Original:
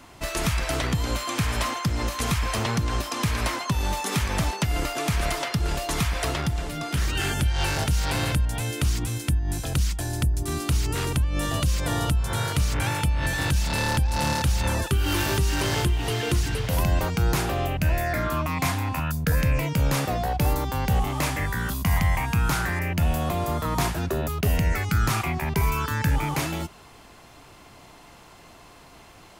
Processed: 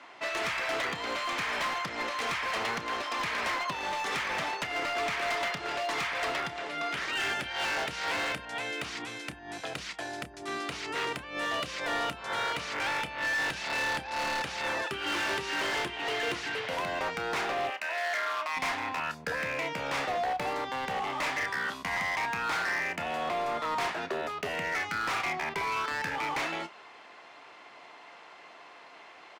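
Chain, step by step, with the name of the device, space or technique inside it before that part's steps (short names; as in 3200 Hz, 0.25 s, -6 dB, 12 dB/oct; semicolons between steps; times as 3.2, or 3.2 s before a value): megaphone (BPF 500–3600 Hz; bell 2000 Hz +4 dB 0.53 oct; hard clip -27.5 dBFS, distortion -11 dB; doubler 30 ms -13.5 dB); 17.7–18.57 HPF 690 Hz 12 dB/oct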